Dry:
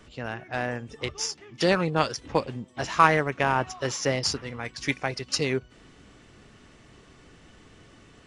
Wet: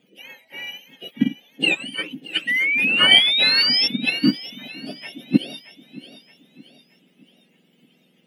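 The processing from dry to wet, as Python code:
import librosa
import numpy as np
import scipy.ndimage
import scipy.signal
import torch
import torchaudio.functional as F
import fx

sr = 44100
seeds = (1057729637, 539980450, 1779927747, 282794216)

y = fx.octave_mirror(x, sr, pivot_hz=1200.0)
y = fx.curve_eq(y, sr, hz=(120.0, 180.0, 530.0, 1100.0, 1600.0, 2900.0, 4100.0, 6000.0, 12000.0), db=(0, 5, -1, -12, 1, 14, -4, -7, -4))
y = fx.spec_paint(y, sr, seeds[0], shape='rise', start_s=2.47, length_s=1.41, low_hz=1900.0, high_hz=5500.0, level_db=-18.0)
y = fx.echo_feedback(y, sr, ms=623, feedback_pct=44, wet_db=-11)
y = fx.upward_expand(y, sr, threshold_db=-22.0, expansion=2.5)
y = y * librosa.db_to_amplitude(4.5)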